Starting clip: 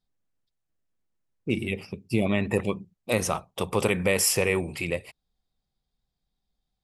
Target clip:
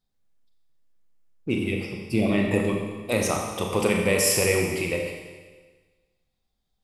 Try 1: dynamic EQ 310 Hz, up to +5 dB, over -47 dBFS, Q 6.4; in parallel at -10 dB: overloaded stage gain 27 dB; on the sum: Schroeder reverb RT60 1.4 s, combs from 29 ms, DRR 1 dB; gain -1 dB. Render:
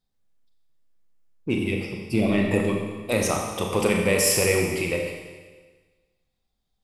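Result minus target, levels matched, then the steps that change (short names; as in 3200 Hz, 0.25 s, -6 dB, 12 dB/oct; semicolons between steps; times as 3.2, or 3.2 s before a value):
overloaded stage: distortion -4 dB
change: overloaded stage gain 38.5 dB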